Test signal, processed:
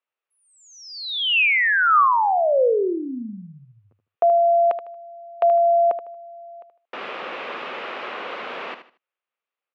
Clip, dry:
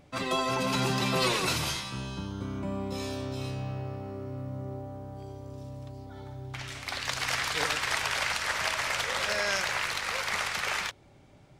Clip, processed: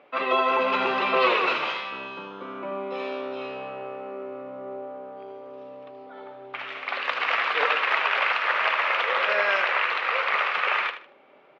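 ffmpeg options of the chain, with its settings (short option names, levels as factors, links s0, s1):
-filter_complex "[0:a]highpass=f=300:w=0.5412,highpass=f=300:w=1.3066,equalizer=f=300:t=q:w=4:g=-7,equalizer=f=510:t=q:w=4:g=4,equalizer=f=1200:t=q:w=4:g=6,equalizer=f=2600:t=q:w=4:g=4,lowpass=f=3000:w=0.5412,lowpass=f=3000:w=1.3066,asplit=2[s0][s1];[s1]aecho=0:1:77|154|231:0.299|0.0806|0.0218[s2];[s0][s2]amix=inputs=2:normalize=0,volume=1.78"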